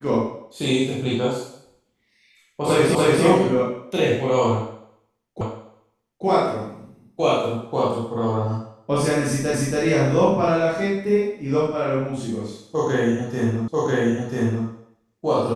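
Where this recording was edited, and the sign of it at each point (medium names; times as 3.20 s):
2.95 s: repeat of the last 0.29 s
5.41 s: repeat of the last 0.84 s
9.54 s: repeat of the last 0.28 s
13.68 s: repeat of the last 0.99 s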